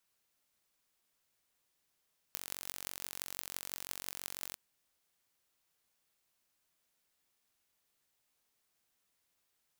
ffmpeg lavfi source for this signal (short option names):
-f lavfi -i "aevalsrc='0.316*eq(mod(n,957),0)*(0.5+0.5*eq(mod(n,7656),0))':d=2.21:s=44100"